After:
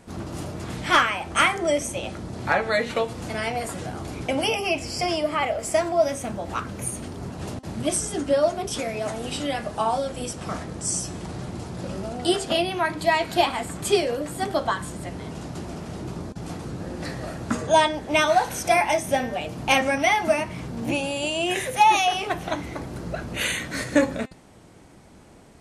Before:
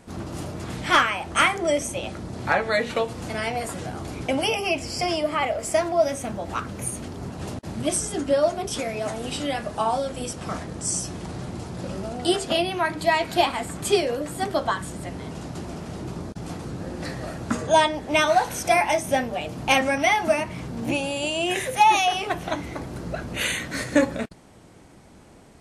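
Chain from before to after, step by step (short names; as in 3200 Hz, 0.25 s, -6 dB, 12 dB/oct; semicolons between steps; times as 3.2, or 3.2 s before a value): de-hum 260.5 Hz, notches 36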